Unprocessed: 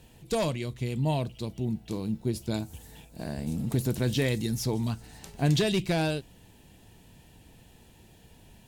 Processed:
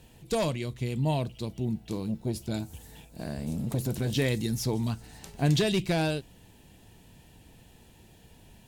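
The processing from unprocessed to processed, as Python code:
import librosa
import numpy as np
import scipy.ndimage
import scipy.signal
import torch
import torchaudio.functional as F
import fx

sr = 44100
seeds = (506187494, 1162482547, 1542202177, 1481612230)

y = fx.transformer_sat(x, sr, knee_hz=270.0, at=(2.03, 4.16))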